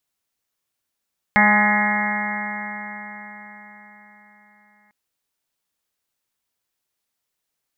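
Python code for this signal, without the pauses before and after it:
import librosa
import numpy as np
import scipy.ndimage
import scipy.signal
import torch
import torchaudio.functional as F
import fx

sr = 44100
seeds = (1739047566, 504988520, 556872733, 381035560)

y = fx.additive_stiff(sr, length_s=3.55, hz=207.0, level_db=-18, upper_db=(-19.5, -8.5, 1.0, -8, -6.5, -11.5, -1, 0, 1), decay_s=4.65, stiffness=0.00061)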